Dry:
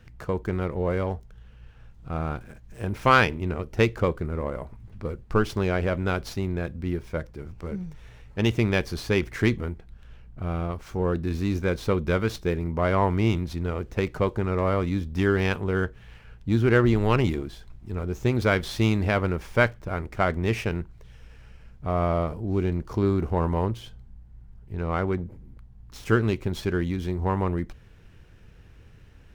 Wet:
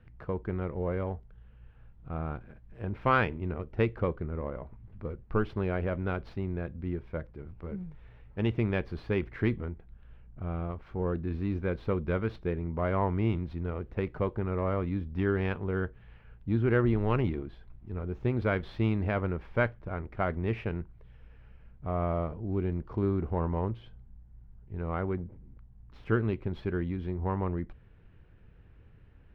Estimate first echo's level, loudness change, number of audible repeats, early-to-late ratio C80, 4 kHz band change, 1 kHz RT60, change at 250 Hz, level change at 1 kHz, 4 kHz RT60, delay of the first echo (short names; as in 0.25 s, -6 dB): none, -6.0 dB, none, none, -14.0 dB, none, -5.5 dB, -7.0 dB, none, none